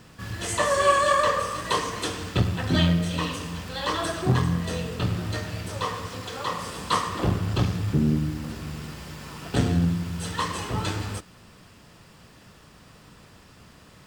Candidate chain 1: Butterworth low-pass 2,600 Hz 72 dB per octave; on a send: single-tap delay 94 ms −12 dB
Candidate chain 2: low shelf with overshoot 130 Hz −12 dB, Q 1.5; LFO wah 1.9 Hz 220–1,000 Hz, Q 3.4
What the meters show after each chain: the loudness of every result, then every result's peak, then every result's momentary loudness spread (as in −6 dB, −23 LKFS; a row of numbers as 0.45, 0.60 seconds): −26.0, −35.5 LKFS; −8.5, −15.0 dBFS; 14, 15 LU